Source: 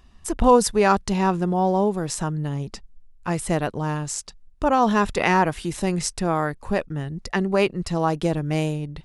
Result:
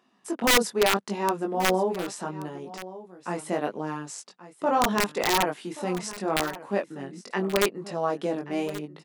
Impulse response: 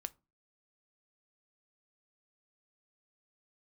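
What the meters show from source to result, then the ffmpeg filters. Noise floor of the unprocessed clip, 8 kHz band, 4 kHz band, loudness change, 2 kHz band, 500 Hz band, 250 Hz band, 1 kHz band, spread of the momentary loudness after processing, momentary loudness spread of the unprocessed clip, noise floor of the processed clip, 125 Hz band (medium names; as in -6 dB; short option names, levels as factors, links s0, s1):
-50 dBFS, -2.0 dB, +3.5 dB, -4.0 dB, -1.0 dB, -4.0 dB, -7.0 dB, -5.0 dB, 14 LU, 10 LU, -59 dBFS, -12.5 dB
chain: -filter_complex "[0:a]highpass=f=220:w=0.5412,highpass=f=220:w=1.3066,highshelf=f=2900:g=-7.5,flanger=delay=19:depth=3.4:speed=0.77,aeval=exprs='(mod(4.47*val(0)+1,2)-1)/4.47':c=same,asplit=2[s0][s1];[s1]aecho=0:1:1129:0.158[s2];[s0][s2]amix=inputs=2:normalize=0"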